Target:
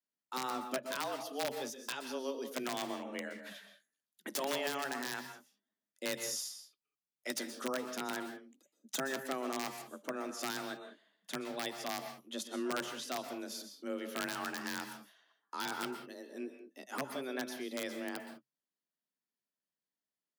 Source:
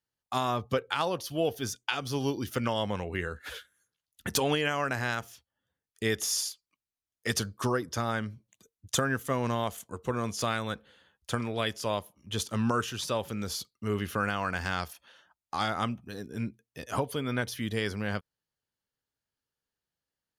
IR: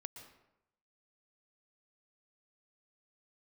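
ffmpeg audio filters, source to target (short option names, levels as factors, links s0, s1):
-filter_complex "[0:a]aeval=exprs='(mod(7.94*val(0)+1,2)-1)/7.94':c=same,afreqshift=130[s0];[1:a]atrim=start_sample=2205,afade=t=out:st=0.25:d=0.01,atrim=end_sample=11466,asetrate=42336,aresample=44100[s1];[s0][s1]afir=irnorm=-1:irlink=0,volume=0.631"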